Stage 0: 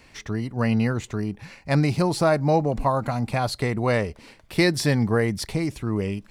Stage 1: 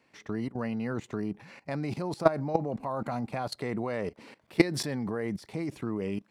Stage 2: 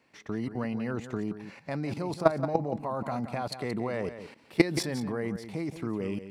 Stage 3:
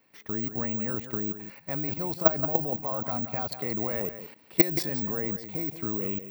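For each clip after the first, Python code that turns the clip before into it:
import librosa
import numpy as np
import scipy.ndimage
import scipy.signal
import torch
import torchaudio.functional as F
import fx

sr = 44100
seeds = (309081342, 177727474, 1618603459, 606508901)

y1 = scipy.signal.sosfilt(scipy.signal.butter(2, 180.0, 'highpass', fs=sr, output='sos'), x)
y1 = fx.high_shelf(y1, sr, hz=2500.0, db=-9.0)
y1 = fx.level_steps(y1, sr, step_db=18)
y1 = y1 * librosa.db_to_amplitude(4.0)
y2 = y1 + 10.0 ** (-11.0 / 20.0) * np.pad(y1, (int(175 * sr / 1000.0), 0))[:len(y1)]
y3 = (np.kron(scipy.signal.resample_poly(y2, 1, 2), np.eye(2)[0]) * 2)[:len(y2)]
y3 = y3 * librosa.db_to_amplitude(-1.5)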